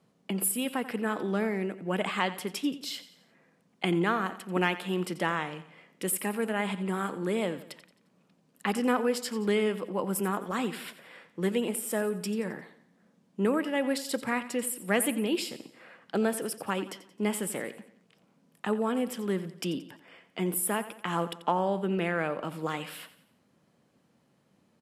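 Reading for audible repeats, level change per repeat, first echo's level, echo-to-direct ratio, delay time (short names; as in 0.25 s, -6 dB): 3, -7.0 dB, -14.5 dB, -13.5 dB, 88 ms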